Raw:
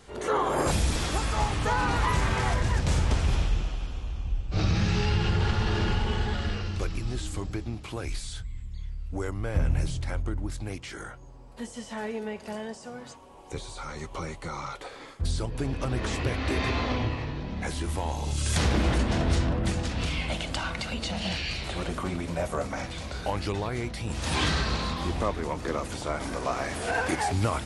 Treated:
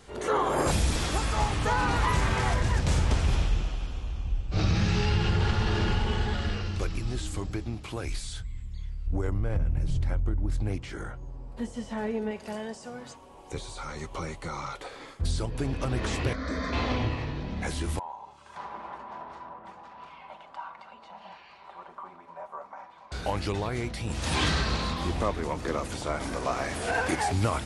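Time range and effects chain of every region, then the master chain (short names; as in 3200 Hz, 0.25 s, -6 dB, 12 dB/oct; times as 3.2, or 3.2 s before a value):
9.06–12.31 tilt -2 dB/oct + compressor 10:1, threshold -22 dBFS
16.33–16.73 LPF 6600 Hz 24 dB/oct + fixed phaser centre 550 Hz, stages 8
17.99–23.12 band-pass 970 Hz, Q 5 + comb 5.1 ms, depth 35%
whole clip: dry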